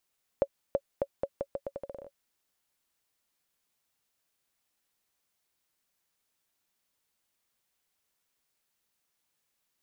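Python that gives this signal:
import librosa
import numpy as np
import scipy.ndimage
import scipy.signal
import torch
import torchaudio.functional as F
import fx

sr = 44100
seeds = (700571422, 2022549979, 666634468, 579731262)

y = fx.bouncing_ball(sr, first_gap_s=0.33, ratio=0.81, hz=556.0, decay_ms=56.0, level_db=-13.5)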